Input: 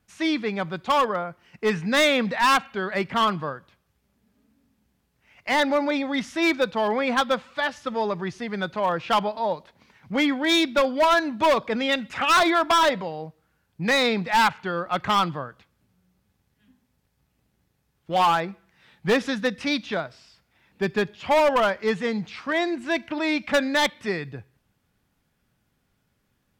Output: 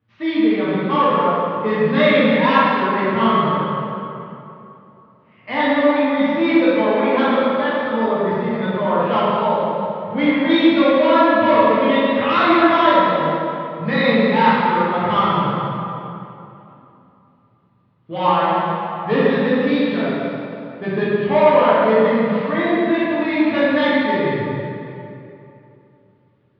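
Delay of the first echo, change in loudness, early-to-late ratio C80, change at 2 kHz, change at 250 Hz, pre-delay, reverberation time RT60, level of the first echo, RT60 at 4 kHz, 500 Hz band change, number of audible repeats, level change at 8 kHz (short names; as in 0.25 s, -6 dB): none, +6.5 dB, -3.0 dB, +3.5 dB, +10.0 dB, 5 ms, 2.9 s, none, 1.9 s, +8.5 dB, none, under -25 dB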